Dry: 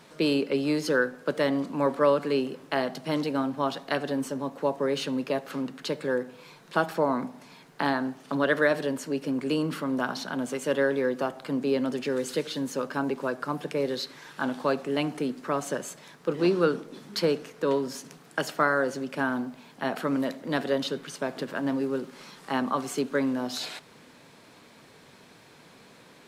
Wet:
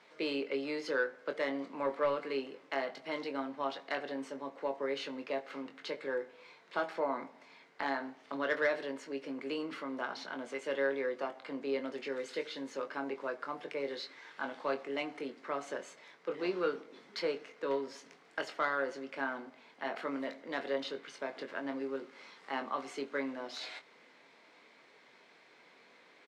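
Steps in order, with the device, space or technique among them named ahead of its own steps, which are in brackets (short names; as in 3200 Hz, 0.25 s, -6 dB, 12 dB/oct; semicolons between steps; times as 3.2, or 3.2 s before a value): intercom (BPF 360–4800 Hz; bell 2100 Hz +8.5 dB 0.23 oct; soft clip -13 dBFS, distortion -23 dB; doubler 22 ms -7.5 dB); gain -8 dB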